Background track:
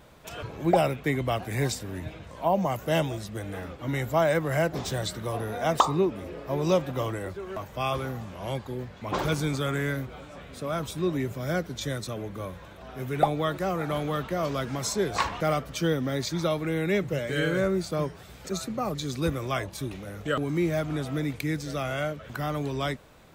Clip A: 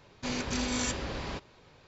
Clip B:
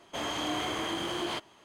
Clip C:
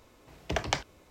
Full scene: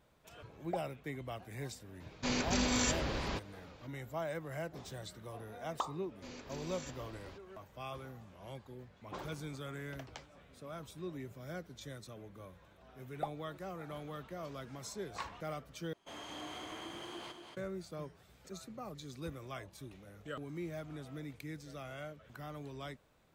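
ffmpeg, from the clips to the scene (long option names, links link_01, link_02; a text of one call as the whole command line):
ffmpeg -i bed.wav -i cue0.wav -i cue1.wav -i cue2.wav -filter_complex "[1:a]asplit=2[link_01][link_02];[0:a]volume=-16dB[link_03];[3:a]flanger=delay=4.4:depth=9.2:regen=-44:speed=1.9:shape=triangular[link_04];[2:a]aecho=1:1:229:0.501[link_05];[link_03]asplit=2[link_06][link_07];[link_06]atrim=end=15.934[link_08];[link_05]atrim=end=1.64,asetpts=PTS-STARTPTS,volume=-14dB[link_09];[link_07]atrim=start=17.566[link_10];[link_01]atrim=end=1.87,asetpts=PTS-STARTPTS,volume=-0.5dB,afade=type=in:duration=0.004:curve=hsin,afade=type=out:start_time=1.866:duration=0.004:curve=hsin,adelay=2000[link_11];[link_02]atrim=end=1.87,asetpts=PTS-STARTPTS,volume=-17dB,afade=type=in:duration=0.004:curve=hsin,afade=type=out:start_time=1.866:duration=0.004:curve=hsin,adelay=5990[link_12];[link_04]atrim=end=1.1,asetpts=PTS-STARTPTS,volume=-17dB,afade=type=in:duration=0.004:curve=hsin,afade=type=out:start_time=1.096:duration=0.004:curve=hsin,adelay=9430[link_13];[link_08][link_09]acrossfade=duration=0.004:curve1=hsin:curve2=hsin[link_14];[link_14][link_10]acrossfade=duration=0.004:curve1=hsin:curve2=hsin[link_15];[link_15][link_11][link_12][link_13]amix=inputs=4:normalize=0" out.wav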